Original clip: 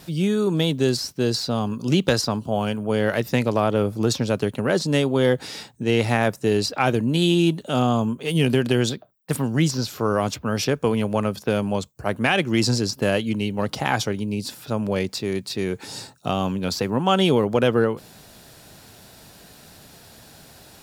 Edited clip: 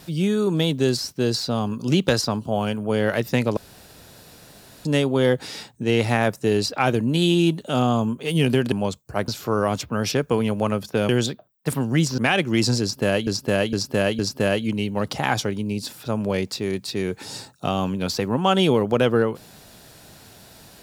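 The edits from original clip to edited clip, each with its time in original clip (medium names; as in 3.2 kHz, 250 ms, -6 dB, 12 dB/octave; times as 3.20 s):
3.57–4.85 s: room tone
8.72–9.81 s: swap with 11.62–12.18 s
12.81–13.27 s: loop, 4 plays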